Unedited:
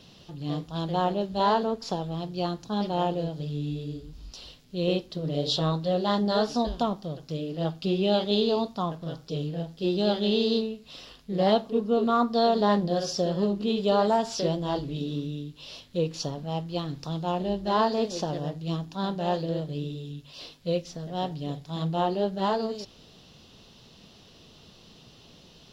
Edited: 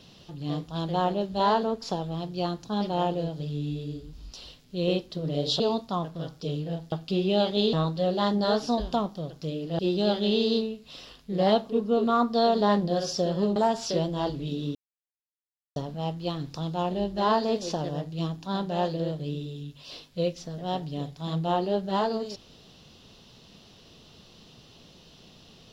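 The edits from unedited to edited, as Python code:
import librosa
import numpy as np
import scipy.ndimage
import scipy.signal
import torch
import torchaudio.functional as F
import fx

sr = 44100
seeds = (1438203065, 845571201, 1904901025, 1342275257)

y = fx.edit(x, sr, fx.swap(start_s=5.6, length_s=2.06, other_s=8.47, other_length_s=1.32),
    fx.cut(start_s=13.56, length_s=0.49),
    fx.silence(start_s=15.24, length_s=1.01), tone=tone)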